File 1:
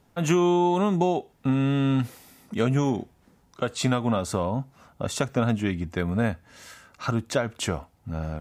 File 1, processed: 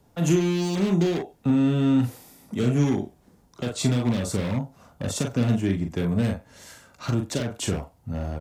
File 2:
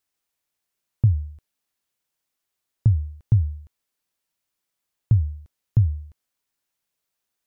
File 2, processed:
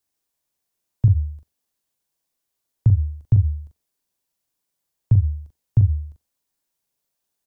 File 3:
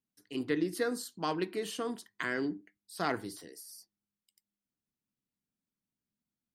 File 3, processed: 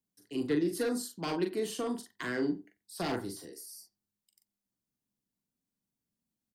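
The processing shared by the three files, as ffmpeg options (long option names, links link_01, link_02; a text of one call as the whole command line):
ffmpeg -i in.wav -filter_complex "[0:a]equalizer=frequency=2200:width=0.73:gain=-6,bandreject=frequency=1300:width=17,asplit=2[link_01][link_02];[link_02]adelay=41,volume=-6dB[link_03];[link_01][link_03]amix=inputs=2:normalize=0,asplit=2[link_04][link_05];[link_05]adelay=90,highpass=300,lowpass=3400,asoftclip=type=hard:threshold=-18dB,volume=-21dB[link_06];[link_04][link_06]amix=inputs=2:normalize=0,acrossover=split=310|430|1900[link_07][link_08][link_09][link_10];[link_09]aeval=exprs='0.0178*(abs(mod(val(0)/0.0178+3,4)-2)-1)':channel_layout=same[link_11];[link_07][link_08][link_11][link_10]amix=inputs=4:normalize=0,volume=2dB" out.wav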